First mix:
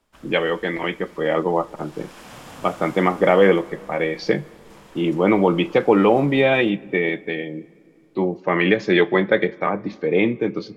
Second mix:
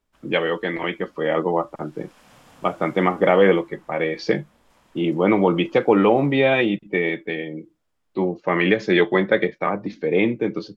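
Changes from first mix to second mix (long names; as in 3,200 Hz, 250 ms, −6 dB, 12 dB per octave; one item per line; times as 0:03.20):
background −10.5 dB
reverb: off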